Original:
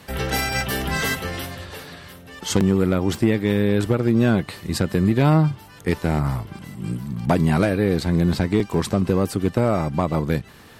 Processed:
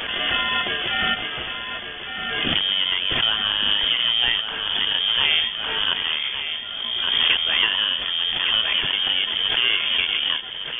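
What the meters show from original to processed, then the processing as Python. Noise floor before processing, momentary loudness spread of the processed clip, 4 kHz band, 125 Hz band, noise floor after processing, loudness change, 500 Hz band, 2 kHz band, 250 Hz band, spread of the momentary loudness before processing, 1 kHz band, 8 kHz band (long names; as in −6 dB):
−45 dBFS, 9 LU, +18.0 dB, −22.0 dB, −32 dBFS, +1.5 dB, −14.5 dB, +6.5 dB, −19.5 dB, 13 LU, −2.0 dB, below −40 dB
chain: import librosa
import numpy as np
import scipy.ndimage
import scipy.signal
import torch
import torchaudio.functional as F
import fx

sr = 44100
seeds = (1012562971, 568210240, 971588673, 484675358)

p1 = fx.highpass(x, sr, hz=790.0, slope=6)
p2 = fx.sample_hold(p1, sr, seeds[0], rate_hz=1200.0, jitter_pct=0)
p3 = p1 + F.gain(torch.from_numpy(p2), -3.5).numpy()
p4 = fx.echo_feedback(p3, sr, ms=1158, feedback_pct=39, wet_db=-9.0)
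p5 = fx.freq_invert(p4, sr, carrier_hz=3400)
p6 = fx.pre_swell(p5, sr, db_per_s=25.0)
y = F.gain(torch.from_numpy(p6), 2.0).numpy()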